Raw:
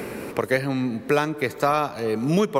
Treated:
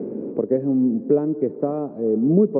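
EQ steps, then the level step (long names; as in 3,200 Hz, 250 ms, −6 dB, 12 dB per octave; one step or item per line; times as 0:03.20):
flat-topped band-pass 320 Hz, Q 1
low-shelf EQ 410 Hz +10 dB
0.0 dB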